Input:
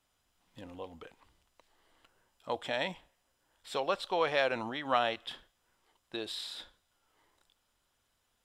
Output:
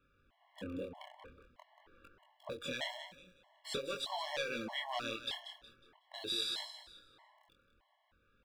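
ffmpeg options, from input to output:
ffmpeg -i in.wav -filter_complex "[0:a]asplit=2[link_01][link_02];[link_02]alimiter=limit=-23dB:level=0:latency=1,volume=-2dB[link_03];[link_01][link_03]amix=inputs=2:normalize=0,asoftclip=type=tanh:threshold=-18dB,acrossover=split=3300[link_04][link_05];[link_04]acompressor=threshold=-40dB:ratio=6[link_06];[link_05]aeval=exprs='val(0)*gte(abs(val(0)),0.00168)':channel_layout=same[link_07];[link_06][link_07]amix=inputs=2:normalize=0,highshelf=frequency=6500:gain=-5,aecho=1:1:183|366|549|732:0.316|0.101|0.0324|0.0104,flanger=delay=20:depth=7.5:speed=0.46,afftfilt=real='re*gt(sin(2*PI*1.6*pts/sr)*(1-2*mod(floor(b*sr/1024/560),2)),0)':imag='im*gt(sin(2*PI*1.6*pts/sr)*(1-2*mod(floor(b*sr/1024/560),2)),0)':win_size=1024:overlap=0.75,volume=6.5dB" out.wav

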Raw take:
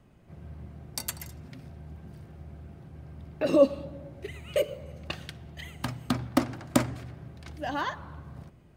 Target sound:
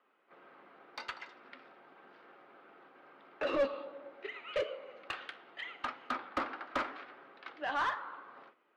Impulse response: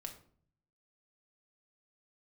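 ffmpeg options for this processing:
-filter_complex "[0:a]highpass=frequency=330:width=0.5412,highpass=frequency=330:width=1.3066,equalizer=frequency=360:width_type=q:width=4:gain=-4,equalizer=frequency=650:width_type=q:width=4:gain=-7,equalizer=frequency=1300:width_type=q:width=4:gain=7,lowpass=frequency=3900:width=0.5412,lowpass=frequency=3900:width=1.3066,asplit=2[link_01][link_02];[link_02]highpass=frequency=720:poles=1,volume=22dB,asoftclip=type=tanh:threshold=-11dB[link_03];[link_01][link_03]amix=inputs=2:normalize=0,lowpass=frequency=2200:poles=1,volume=-6dB,flanger=delay=7.4:depth=8.3:regen=-71:speed=0.83:shape=sinusoidal,agate=range=-7dB:threshold=-53dB:ratio=16:detection=peak,volume=-7dB"

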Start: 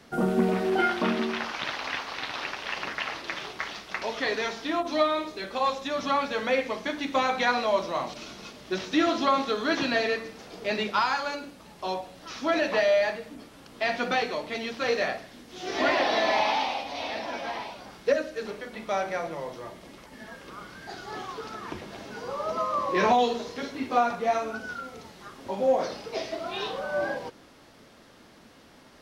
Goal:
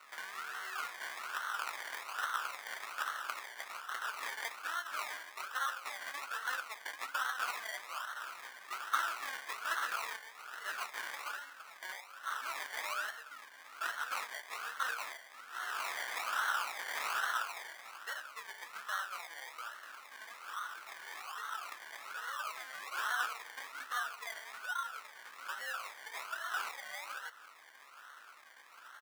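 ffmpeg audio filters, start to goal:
ffmpeg -i in.wav -filter_complex "[0:a]asettb=1/sr,asplit=3[link_01][link_02][link_03];[link_01]atrim=end=16.794[link_04];[link_02]atrim=start=16.79:end=17.43,asetpts=PTS-STARTPTS,afade=type=in:duration=0.004:curve=qsin,afade=type=out:start_time=0.636:duration=0.004:curve=qsin,highshelf=frequency=3800:width_type=q:width=1.5:gain=13[link_05];[link_03]atrim=start=17.426[link_06];[link_04][link_05]acrossfade=duration=0.004:curve1=hsin:curve2=qsin[link_07];[link_07][link_06]acrossfade=duration=0.004:curve1=qsin:curve2=hsin,acrossover=split=2800[link_08][link_09];[link_08]acompressor=threshold=-42dB:ratio=4[link_10];[link_10][link_09]amix=inputs=2:normalize=0,acrusher=samples=26:mix=1:aa=0.000001:lfo=1:lforange=15.6:lforate=1.2,highpass=frequency=1400:width_type=q:width=4.1,asplit=2[link_11][link_12];[link_12]adelay=15,volume=-13.5dB[link_13];[link_11][link_13]amix=inputs=2:normalize=0,volume=-1dB" out.wav

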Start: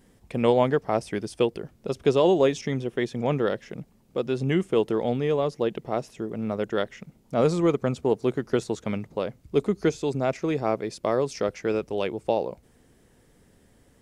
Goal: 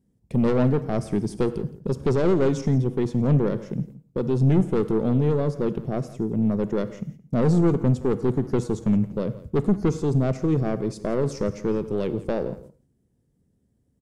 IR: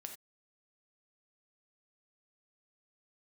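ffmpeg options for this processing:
-filter_complex "[0:a]highpass=frequency=150:poles=1,agate=range=-18dB:threshold=-51dB:ratio=16:detection=peak,tiltshelf=frequency=640:gain=9.5,aeval=exprs='(tanh(7.94*val(0)+0.15)-tanh(0.15))/7.94':channel_layout=same,bass=frequency=250:gain=9,treble=frequency=4000:gain=10,aecho=1:1:169:0.126,asplit=2[link_01][link_02];[1:a]atrim=start_sample=2205,asetrate=34398,aresample=44100[link_03];[link_02][link_03]afir=irnorm=-1:irlink=0,volume=-2.5dB[link_04];[link_01][link_04]amix=inputs=2:normalize=0,volume=-4dB"

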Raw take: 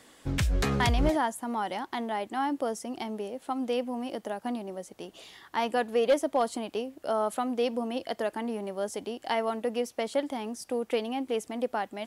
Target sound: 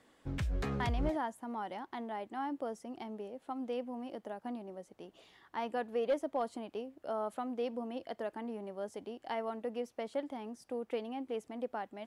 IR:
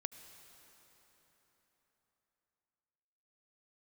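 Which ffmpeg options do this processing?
-af "highshelf=frequency=3400:gain=-11,volume=-8dB"

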